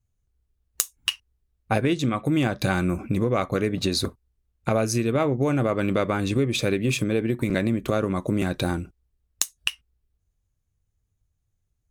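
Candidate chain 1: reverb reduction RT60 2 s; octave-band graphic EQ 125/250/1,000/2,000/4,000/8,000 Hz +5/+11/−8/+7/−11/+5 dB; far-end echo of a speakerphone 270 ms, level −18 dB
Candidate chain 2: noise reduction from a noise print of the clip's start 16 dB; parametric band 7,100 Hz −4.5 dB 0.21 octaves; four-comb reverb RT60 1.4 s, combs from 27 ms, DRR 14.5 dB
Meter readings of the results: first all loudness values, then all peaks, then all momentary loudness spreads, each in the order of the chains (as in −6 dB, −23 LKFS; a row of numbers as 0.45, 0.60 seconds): −20.5, −25.0 LKFS; −2.0, −5.0 dBFS; 9, 7 LU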